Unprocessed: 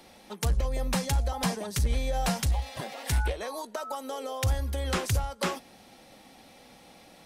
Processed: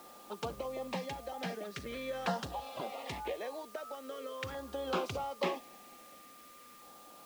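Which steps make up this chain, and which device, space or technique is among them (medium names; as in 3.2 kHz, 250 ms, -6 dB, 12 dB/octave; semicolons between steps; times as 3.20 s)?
shortwave radio (band-pass 280–2800 Hz; tremolo 0.38 Hz, depth 41%; LFO notch saw down 0.44 Hz 690–2400 Hz; whistle 1.2 kHz -56 dBFS; white noise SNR 19 dB)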